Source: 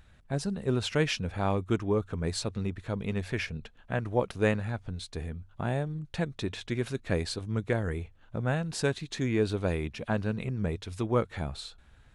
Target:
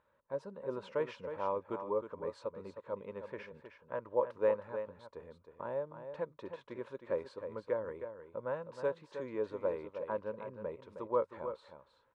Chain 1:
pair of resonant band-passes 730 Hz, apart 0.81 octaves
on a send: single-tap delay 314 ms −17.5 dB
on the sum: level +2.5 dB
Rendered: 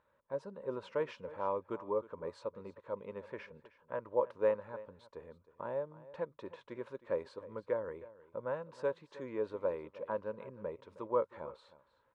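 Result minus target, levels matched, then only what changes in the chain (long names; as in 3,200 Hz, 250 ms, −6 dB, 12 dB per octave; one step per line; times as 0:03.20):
echo-to-direct −8.5 dB
change: single-tap delay 314 ms −9 dB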